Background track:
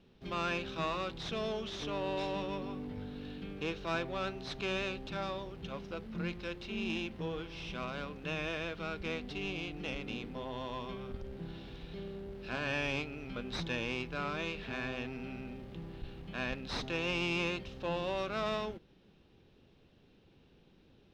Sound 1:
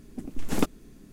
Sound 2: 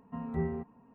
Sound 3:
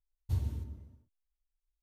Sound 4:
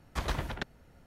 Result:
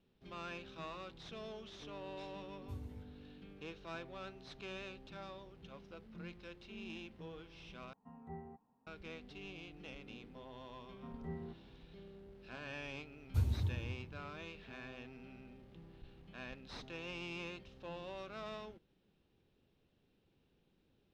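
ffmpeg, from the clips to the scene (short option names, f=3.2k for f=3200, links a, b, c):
-filter_complex "[3:a]asplit=2[a][b];[2:a]asplit=2[c][d];[0:a]volume=-11.5dB[e];[c]equalizer=f=800:w=8:g=14.5[f];[b]asplit=2[g][h];[h]adelay=260,lowpass=f=2.1k:p=1,volume=-4.5dB,asplit=2[i][j];[j]adelay=260,lowpass=f=2.1k:p=1,volume=0.33,asplit=2[k][l];[l]adelay=260,lowpass=f=2.1k:p=1,volume=0.33,asplit=2[m][n];[n]adelay=260,lowpass=f=2.1k:p=1,volume=0.33[o];[g][i][k][m][o]amix=inputs=5:normalize=0[p];[e]asplit=2[q][r];[q]atrim=end=7.934[s];[f]atrim=end=0.94,asetpts=PTS-STARTPTS,volume=-17.5dB[t];[r]atrim=start=8.866[u];[a]atrim=end=1.82,asetpts=PTS-STARTPTS,volume=-14.5dB,afade=t=in:d=0.004:c=hsin,afade=t=out:st=1.816:d=0.004:c=hsin,adelay=2390[v];[d]atrim=end=0.94,asetpts=PTS-STARTPTS,volume=-12dB,afade=t=in:d=0.004:c=hsin,afade=t=out:st=0.936:d=0.004:c=hsin,adelay=480690S[w];[p]atrim=end=1.82,asetpts=PTS-STARTPTS,volume=-0.5dB,afade=t=in:d=0.004:c=hsin,afade=t=out:st=1.816:d=0.004:c=hsin,adelay=13050[x];[s][t]acrossfade=d=0.004:c1=hsin:c2=hsin[y];[y][u]acrossfade=d=0.004:c1=hsin:c2=hsin[z];[z][v][w][x]amix=inputs=4:normalize=0"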